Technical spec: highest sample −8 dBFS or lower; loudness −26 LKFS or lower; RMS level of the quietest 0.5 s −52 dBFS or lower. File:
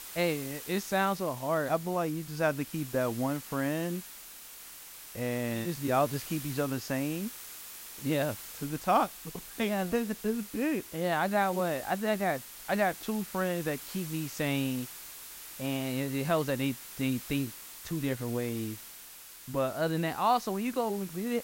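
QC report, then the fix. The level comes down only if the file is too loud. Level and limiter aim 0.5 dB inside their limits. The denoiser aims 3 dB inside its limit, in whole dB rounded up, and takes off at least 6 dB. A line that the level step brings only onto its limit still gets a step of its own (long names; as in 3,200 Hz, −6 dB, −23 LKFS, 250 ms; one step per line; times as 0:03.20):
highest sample −13.0 dBFS: in spec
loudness −32.0 LKFS: in spec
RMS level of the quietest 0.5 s −49 dBFS: out of spec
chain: broadband denoise 6 dB, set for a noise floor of −49 dBFS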